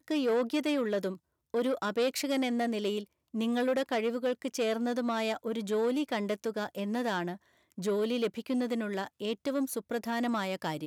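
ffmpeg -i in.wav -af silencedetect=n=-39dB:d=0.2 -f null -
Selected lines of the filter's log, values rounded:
silence_start: 1.15
silence_end: 1.54 | silence_duration: 0.39
silence_start: 3.04
silence_end: 3.34 | silence_duration: 0.31
silence_start: 7.35
silence_end: 7.78 | silence_duration: 0.43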